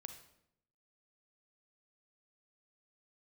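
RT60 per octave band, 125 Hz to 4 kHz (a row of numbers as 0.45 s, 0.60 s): 1.0 s, 0.95 s, 0.85 s, 0.70 s, 0.65 s, 0.60 s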